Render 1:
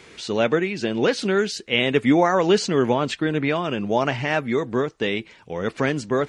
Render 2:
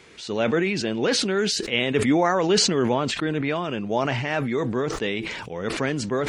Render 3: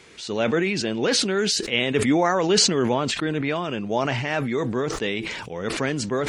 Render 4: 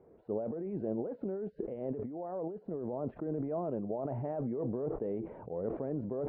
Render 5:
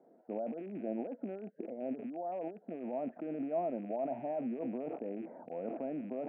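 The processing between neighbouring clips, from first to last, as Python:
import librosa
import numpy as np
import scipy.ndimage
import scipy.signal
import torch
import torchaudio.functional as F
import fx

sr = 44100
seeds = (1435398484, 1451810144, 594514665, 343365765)

y1 = fx.sustainer(x, sr, db_per_s=31.0)
y1 = y1 * 10.0 ** (-3.5 / 20.0)
y2 = fx.peak_eq(y1, sr, hz=9800.0, db=3.5, octaves=2.1)
y3 = fx.over_compress(y2, sr, threshold_db=-26.0, ratio=-1.0)
y3 = fx.ladder_lowpass(y3, sr, hz=770.0, resonance_pct=40)
y3 = y3 * 10.0 ** (-3.5 / 20.0)
y4 = fx.rattle_buzz(y3, sr, strikes_db=-46.0, level_db=-43.0)
y4 = fx.cabinet(y4, sr, low_hz=210.0, low_slope=24, high_hz=2000.0, hz=(250.0, 420.0, 690.0, 1100.0), db=(5, -8, 8, -8))
y4 = y4 * 10.0 ** (-2.0 / 20.0)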